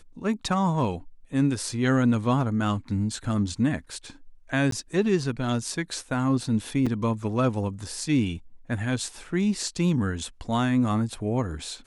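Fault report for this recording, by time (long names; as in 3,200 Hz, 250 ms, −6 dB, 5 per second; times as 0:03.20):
0:04.71–0:04.72: drop-out 13 ms
0:06.86–0:06.87: drop-out 5.7 ms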